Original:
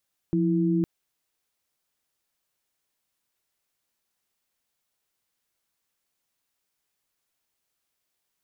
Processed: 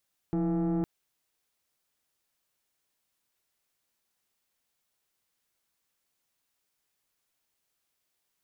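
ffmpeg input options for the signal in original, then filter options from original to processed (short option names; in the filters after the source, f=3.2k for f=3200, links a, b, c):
-f lavfi -i "aevalsrc='0.0708*(sin(2*PI*174.61*t)+sin(2*PI*329.63*t))':d=0.51:s=44100"
-af "asoftclip=type=tanh:threshold=-25dB"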